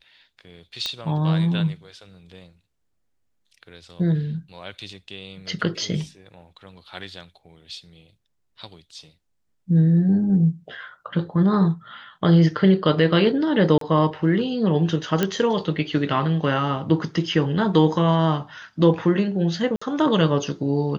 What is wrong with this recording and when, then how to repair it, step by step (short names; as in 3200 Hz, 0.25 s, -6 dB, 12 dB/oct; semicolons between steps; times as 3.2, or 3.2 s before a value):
0.86 pop -12 dBFS
13.78–13.81 gap 33 ms
15.23 pop -7 dBFS
19.76–19.82 gap 55 ms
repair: de-click; interpolate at 13.78, 33 ms; interpolate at 19.76, 55 ms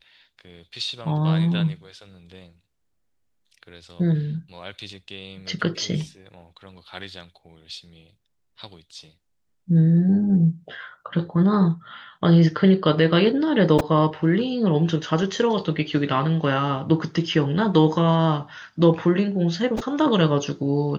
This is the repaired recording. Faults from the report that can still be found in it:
none